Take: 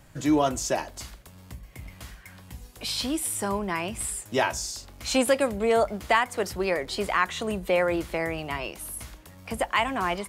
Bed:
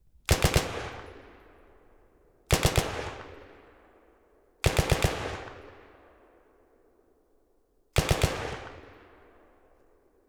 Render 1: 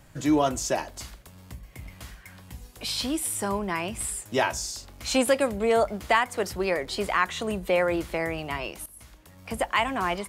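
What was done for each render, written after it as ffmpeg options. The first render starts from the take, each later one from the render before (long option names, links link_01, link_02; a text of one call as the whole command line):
ffmpeg -i in.wav -filter_complex "[0:a]asplit=2[link_01][link_02];[link_01]atrim=end=8.86,asetpts=PTS-STARTPTS,afade=type=out:start_time=8.856:duration=0.004:curve=hsin:silence=0.149624[link_03];[link_02]atrim=start=8.86,asetpts=PTS-STARTPTS,afade=type=in:duration=0.69:silence=0.149624[link_04];[link_03][link_04]concat=n=2:v=0:a=1" out.wav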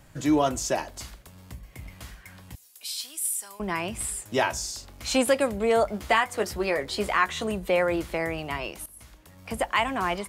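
ffmpeg -i in.wav -filter_complex "[0:a]asettb=1/sr,asplit=3[link_01][link_02][link_03];[link_01]atrim=end=2.554[link_04];[link_02]atrim=start=2.55:end=3.6,asetpts=PTS-STARTPTS,afade=type=in:duration=0.004:curve=qsin,afade=type=out:start_time=1.046:duration=0.004:curve=qsin,aderivative[link_05];[link_03]atrim=start=3.596[link_06];[link_04][link_05]acrossfade=duration=0.004:curve1=hsin:curve2=qsin[link_07];[link_07][link_06]acrossfade=duration=0.004:curve1=qsin:curve2=hsin,asettb=1/sr,asplit=3[link_08][link_09][link_10];[link_08]atrim=end=5.924[link_11];[link_09]atrim=start=5.92:end=7.47,asetpts=PTS-STARTPTS,afade=type=in:duration=0.004:curve=qsin,afade=type=out:start_time=1.546:duration=0.004:curve=qsin,asplit=2[link_12][link_13];[link_13]adelay=14,volume=-8dB[link_14];[link_12][link_14]amix=inputs=2:normalize=0,atrim=end_sample=68355[link_15];[link_10]atrim=start=7.466[link_16];[link_11][link_15]acrossfade=duration=0.004:curve1=hsin:curve2=qsin[link_17];[link_17][link_16]acrossfade=duration=0.004:curve1=qsin:curve2=hsin" out.wav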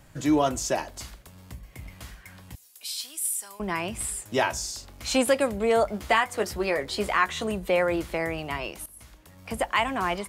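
ffmpeg -i in.wav -af anull out.wav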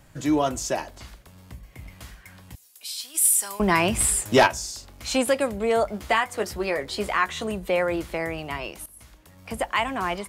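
ffmpeg -i in.wav -filter_complex "[0:a]asettb=1/sr,asplit=3[link_01][link_02][link_03];[link_01]atrim=end=0.914[link_04];[link_02]atrim=start=0.91:end=1.86,asetpts=PTS-STARTPTS,afade=type=in:duration=0.004:curve=qsin,afade=type=out:start_time=0.946:duration=0.004:curve=qsin,acrossover=split=3800[link_05][link_06];[link_06]acompressor=threshold=-50dB:ratio=4:attack=1:release=60[link_07];[link_05][link_07]amix=inputs=2:normalize=0[link_08];[link_03]atrim=start=1.856[link_09];[link_04][link_08]acrossfade=duration=0.004:curve1=hsin:curve2=qsin[link_10];[link_10][link_09]acrossfade=duration=0.004:curve1=qsin:curve2=hsin,asplit=3[link_11][link_12][link_13];[link_11]afade=type=out:start_time=3.14:duration=0.02[link_14];[link_12]aeval=exprs='0.355*sin(PI/2*2*val(0)/0.355)':channel_layout=same,afade=type=in:start_time=3.14:duration=0.02,afade=type=out:start_time=4.46:duration=0.02[link_15];[link_13]afade=type=in:start_time=4.46:duration=0.02[link_16];[link_14][link_15][link_16]amix=inputs=3:normalize=0" out.wav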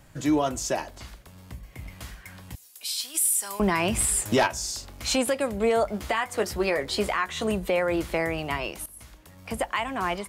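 ffmpeg -i in.wav -af "dynaudnorm=framelen=530:gausssize=7:maxgain=3.5dB,alimiter=limit=-14.5dB:level=0:latency=1:release=261" out.wav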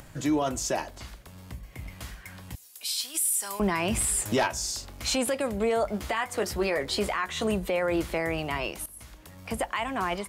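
ffmpeg -i in.wav -af "acompressor=mode=upward:threshold=-42dB:ratio=2.5,alimiter=limit=-18dB:level=0:latency=1:release=11" out.wav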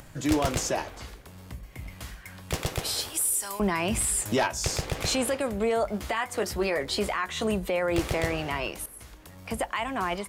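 ffmpeg -i in.wav -i bed.wav -filter_complex "[1:a]volume=-6.5dB[link_01];[0:a][link_01]amix=inputs=2:normalize=0" out.wav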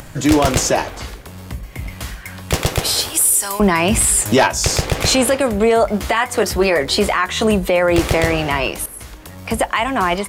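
ffmpeg -i in.wav -af "volume=12dB,alimiter=limit=-3dB:level=0:latency=1" out.wav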